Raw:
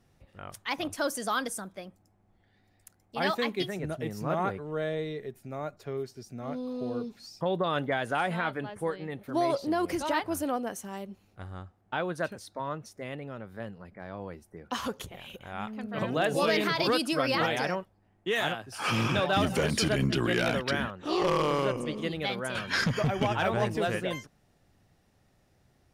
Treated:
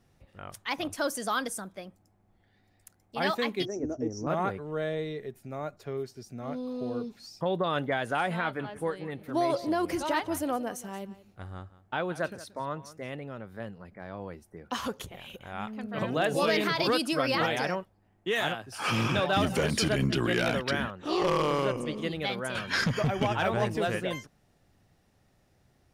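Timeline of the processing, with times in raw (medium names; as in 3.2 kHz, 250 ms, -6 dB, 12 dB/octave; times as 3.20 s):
3.65–4.27 s: FFT filter 120 Hz 0 dB, 170 Hz -17 dB, 250 Hz +9 dB, 390 Hz +4 dB, 2.6 kHz -18 dB, 4 kHz -25 dB, 5.8 kHz +11 dB, 9.8 kHz -29 dB
8.41–13.21 s: delay 179 ms -17 dB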